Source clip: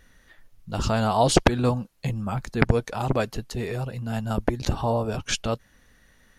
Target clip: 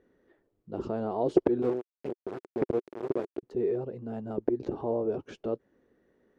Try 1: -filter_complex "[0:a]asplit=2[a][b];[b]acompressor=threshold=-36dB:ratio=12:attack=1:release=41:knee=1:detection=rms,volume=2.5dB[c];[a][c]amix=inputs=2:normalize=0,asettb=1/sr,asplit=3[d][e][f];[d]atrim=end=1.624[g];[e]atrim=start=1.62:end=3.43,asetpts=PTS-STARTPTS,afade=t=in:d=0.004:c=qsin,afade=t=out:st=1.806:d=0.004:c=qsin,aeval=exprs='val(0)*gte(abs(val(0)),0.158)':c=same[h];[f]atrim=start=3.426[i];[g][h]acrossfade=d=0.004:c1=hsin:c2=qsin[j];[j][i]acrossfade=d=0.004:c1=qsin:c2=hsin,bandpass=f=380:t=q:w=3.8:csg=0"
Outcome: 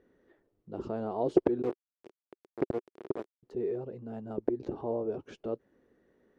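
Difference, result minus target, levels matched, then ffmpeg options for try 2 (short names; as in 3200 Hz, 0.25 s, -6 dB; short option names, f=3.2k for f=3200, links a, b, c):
compressor: peak gain reduction +11 dB
-filter_complex "[0:a]asplit=2[a][b];[b]acompressor=threshold=-24dB:ratio=12:attack=1:release=41:knee=1:detection=rms,volume=2.5dB[c];[a][c]amix=inputs=2:normalize=0,asettb=1/sr,asplit=3[d][e][f];[d]atrim=end=1.624[g];[e]atrim=start=1.62:end=3.43,asetpts=PTS-STARTPTS,afade=t=in:d=0.004:c=qsin,afade=t=out:st=1.806:d=0.004:c=qsin,aeval=exprs='val(0)*gte(abs(val(0)),0.158)':c=same[h];[f]atrim=start=3.426[i];[g][h]acrossfade=d=0.004:c1=hsin:c2=qsin[j];[j][i]acrossfade=d=0.004:c1=qsin:c2=hsin,bandpass=f=380:t=q:w=3.8:csg=0"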